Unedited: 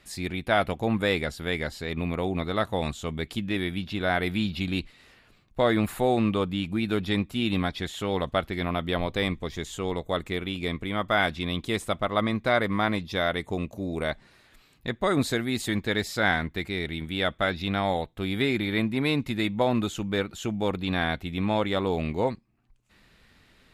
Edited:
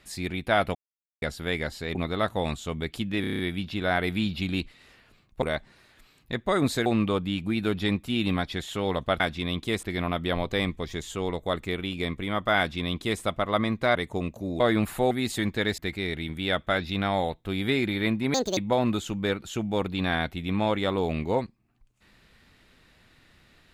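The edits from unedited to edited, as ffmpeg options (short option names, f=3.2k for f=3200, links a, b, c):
-filter_complex "[0:a]asplit=20[a][b][c][d][e][f][g][h][i][j][k][l][m][n][o][p][q][r][s][t];[a]atrim=end=0.75,asetpts=PTS-STARTPTS,afade=t=out:st=0.746:d=0.004:c=hsin[u];[b]atrim=start=0.75:end=1.22,asetpts=PTS-STARTPTS,volume=0[v];[c]atrim=start=1.22:end=1.952,asetpts=PTS-STARTPTS,afade=t=in:d=0.004:c=hsin[w];[d]atrim=start=2.318:end=3.612[x];[e]atrim=start=3.578:end=3.612[y];[f]atrim=start=3.578:end=3.612[z];[g]atrim=start=3.578:end=3.612[aa];[h]atrim=start=3.578:end=3.612[ab];[i]atrim=start=3.578:end=3.612[ac];[j]atrim=start=3.578:end=5.612[ad];[k]atrim=start=13.968:end=15.412[ae];[l]atrim=start=6.118:end=8.462[af];[m]atrim=start=11.208:end=11.842[ag];[n]atrim=start=8.458:end=12.582[ah];[o]atrim=start=13.318:end=13.972[ai];[p]atrim=start=5.608:end=6.122[aj];[q]atrim=start=15.408:end=16.082[ak];[r]atrim=start=16.498:end=19.064[al];[s]atrim=start=19.06:end=19.46,asetpts=PTS-STARTPTS,asetrate=76293,aresample=44100[am];[t]atrim=start=19.456[an];[u][v][w]concat=n=3:v=0:a=1[ao];[ao][x]acrossfade=d=0.004:c1=hsin:c2=hsin[ap];[ap][y]acrossfade=d=0.004:c1=hsin:c2=hsin[aq];[aq][z]acrossfade=d=0.004:c1=hsin:c2=hsin[ar];[ar][aa]acrossfade=d=0.004:c1=hsin:c2=hsin[as];[as][ab]acrossfade=d=0.004:c1=hsin:c2=hsin[at];[at][ac]acrossfade=d=0.004:c1=hsin:c2=hsin[au];[au][ad]acrossfade=d=0.004:c1=hsin:c2=hsin[av];[av][ae]acrossfade=d=0.004:c1=hsin:c2=hsin[aw];[aw][af]acrossfade=d=0.004:c1=hsin:c2=hsin[ax];[ax][ag]acrossfade=d=0.004:c1=hsin:c2=hsin[ay];[ay][ah]acrossfade=d=0.004:c1=hsin:c2=hsin[az];[az][ai]acrossfade=d=0.004:c1=hsin:c2=hsin[ba];[ba][aj]acrossfade=d=0.004:c1=hsin:c2=hsin[bb];[bb][ak]acrossfade=d=0.004:c1=hsin:c2=hsin[bc];[bc][al]acrossfade=d=0.004:c1=hsin:c2=hsin[bd];[bd][am]acrossfade=d=0.004:c1=hsin:c2=hsin[be];[be][an]acrossfade=d=0.004:c1=hsin:c2=hsin"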